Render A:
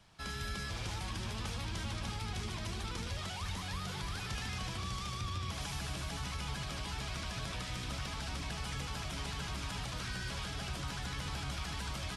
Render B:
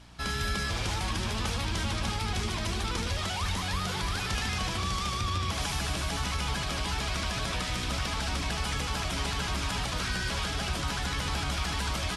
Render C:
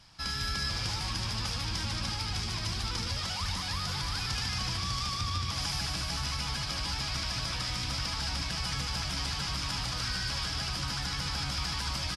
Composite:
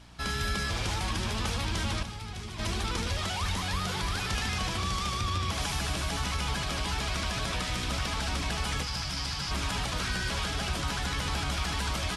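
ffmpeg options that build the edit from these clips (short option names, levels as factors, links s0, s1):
-filter_complex "[1:a]asplit=3[s0][s1][s2];[s0]atrim=end=2.032[s3];[0:a]atrim=start=2.028:end=2.592[s4];[s1]atrim=start=2.588:end=8.832[s5];[2:a]atrim=start=8.828:end=9.512[s6];[s2]atrim=start=9.508[s7];[s3][s4]acrossfade=d=0.004:c1=hsin:c2=hsin[s8];[s8][s5]acrossfade=d=0.004:c1=hsin:c2=hsin[s9];[s9][s6]acrossfade=d=0.004:c1=hsin:c2=hsin[s10];[s10][s7]acrossfade=d=0.004:c1=hsin:c2=hsin"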